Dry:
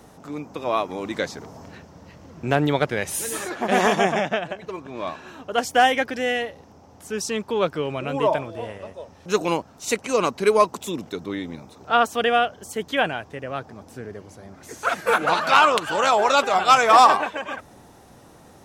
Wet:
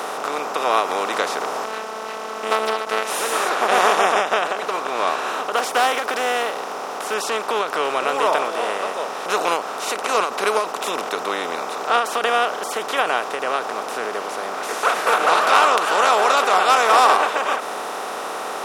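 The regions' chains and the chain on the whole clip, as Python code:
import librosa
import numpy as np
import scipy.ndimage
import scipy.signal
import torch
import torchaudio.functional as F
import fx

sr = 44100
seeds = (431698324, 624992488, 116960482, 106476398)

y = fx.chain(x, sr, fx.robotise(hz=219.0),
    fx.doppler_dist(depth_ms=0.43), at=(1.64, 3.1))
y = fx.chain(y, sr, fx.block_float(bits=7),
    fx.clip_hard(threshold_db=-12.0), at=(5.56, 7.16))
y = fx.bin_compress(y, sr, power=0.4)
y = scipy.signal.sosfilt(scipy.signal.butter(2, 370.0, 'highpass', fs=sr, output='sos'), y)
y = fx.end_taper(y, sr, db_per_s=120.0)
y = F.gain(torch.from_numpy(y), -4.5).numpy()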